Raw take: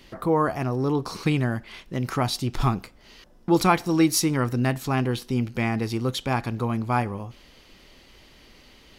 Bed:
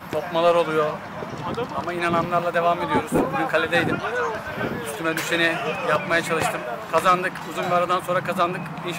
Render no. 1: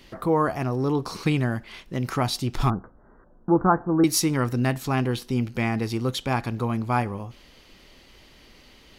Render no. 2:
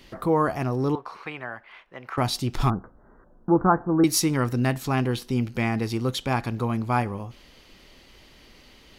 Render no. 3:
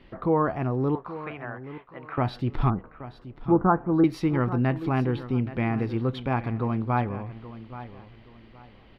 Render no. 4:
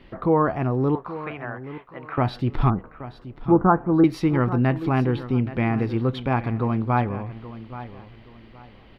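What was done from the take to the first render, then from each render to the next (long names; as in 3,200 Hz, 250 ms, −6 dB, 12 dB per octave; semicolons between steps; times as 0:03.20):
0:02.70–0:04.04: Butterworth low-pass 1,600 Hz 72 dB per octave
0:00.95–0:02.18: three-way crossover with the lows and the highs turned down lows −22 dB, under 580 Hz, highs −23 dB, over 2,500 Hz
high-frequency loss of the air 430 metres; repeating echo 826 ms, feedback 28%, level −14.5 dB
level +3.5 dB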